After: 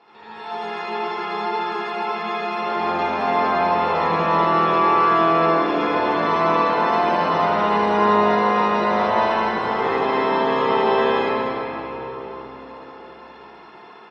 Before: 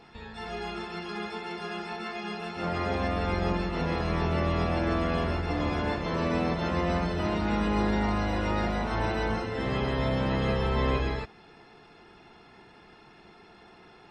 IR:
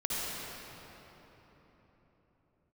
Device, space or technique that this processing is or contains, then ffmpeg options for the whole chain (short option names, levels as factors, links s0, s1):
station announcement: -filter_complex "[0:a]highpass=330,lowpass=4500,equalizer=f=1000:t=o:w=0.55:g=8,aecho=1:1:78.72|288.6:0.891|0.282[s0];[1:a]atrim=start_sample=2205[s1];[s0][s1]afir=irnorm=-1:irlink=0,volume=0.891"